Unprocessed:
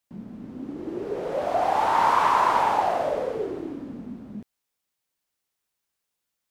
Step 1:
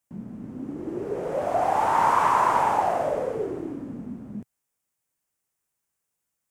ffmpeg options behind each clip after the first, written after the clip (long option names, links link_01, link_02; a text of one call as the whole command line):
ffmpeg -i in.wav -af "equalizer=frequency=125:width_type=o:width=1:gain=5,equalizer=frequency=4000:width_type=o:width=1:gain=-9,equalizer=frequency=8000:width_type=o:width=1:gain=5" out.wav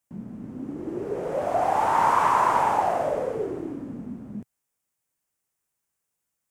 ffmpeg -i in.wav -af anull out.wav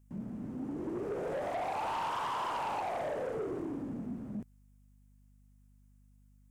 ffmpeg -i in.wav -af "aeval=exprs='val(0)+0.00112*(sin(2*PI*50*n/s)+sin(2*PI*2*50*n/s)/2+sin(2*PI*3*50*n/s)/3+sin(2*PI*4*50*n/s)/4+sin(2*PI*5*50*n/s)/5)':channel_layout=same,acompressor=threshold=-26dB:ratio=4,asoftclip=type=tanh:threshold=-29.5dB,volume=-2dB" out.wav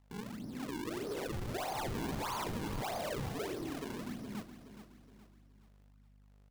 ffmpeg -i in.wav -filter_complex "[0:a]acrusher=samples=40:mix=1:aa=0.000001:lfo=1:lforange=64:lforate=1.6,asplit=2[link_01][link_02];[link_02]aecho=0:1:420|840|1260|1680:0.282|0.121|0.0521|0.0224[link_03];[link_01][link_03]amix=inputs=2:normalize=0,volume=-3dB" out.wav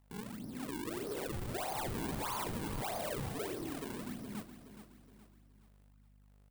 ffmpeg -i in.wav -af "aexciter=amount=1.6:drive=6.8:freq=8100,volume=-1dB" out.wav